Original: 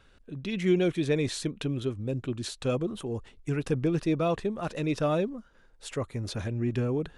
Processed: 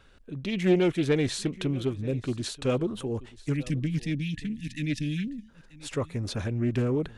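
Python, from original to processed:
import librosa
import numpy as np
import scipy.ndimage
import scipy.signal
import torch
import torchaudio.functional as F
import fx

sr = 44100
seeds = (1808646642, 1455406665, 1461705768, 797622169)

p1 = fx.spec_erase(x, sr, start_s=3.53, length_s=1.96, low_hz=310.0, high_hz=1700.0)
p2 = p1 + fx.echo_single(p1, sr, ms=934, db=-20.0, dry=0)
p3 = fx.doppler_dist(p2, sr, depth_ms=0.23)
y = p3 * 10.0 ** (2.0 / 20.0)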